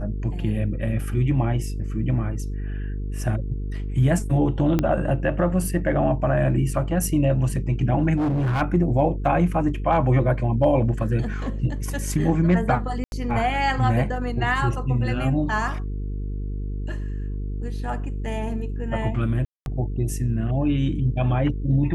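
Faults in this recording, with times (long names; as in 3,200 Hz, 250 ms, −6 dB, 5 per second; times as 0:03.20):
mains buzz 50 Hz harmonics 9 −28 dBFS
0:04.79: click −9 dBFS
0:08.16–0:08.62: clipping −19.5 dBFS
0:13.04–0:13.12: drop-out 81 ms
0:19.45–0:19.66: drop-out 211 ms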